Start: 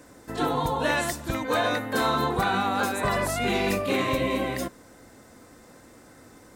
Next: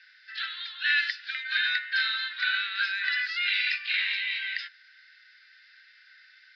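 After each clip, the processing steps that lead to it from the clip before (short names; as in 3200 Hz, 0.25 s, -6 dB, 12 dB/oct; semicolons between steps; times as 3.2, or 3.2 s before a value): Chebyshev band-pass 1500–5000 Hz, order 5; gain +5.5 dB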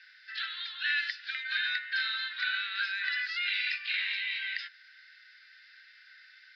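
compressor 1.5:1, threshold -36 dBFS, peak gain reduction 5.5 dB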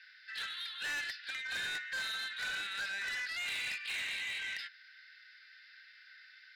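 soft clip -32.5 dBFS, distortion -10 dB; gain -1.5 dB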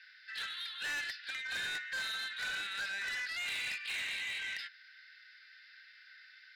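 nothing audible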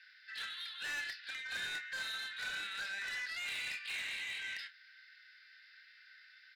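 doubler 29 ms -10 dB; gain -3 dB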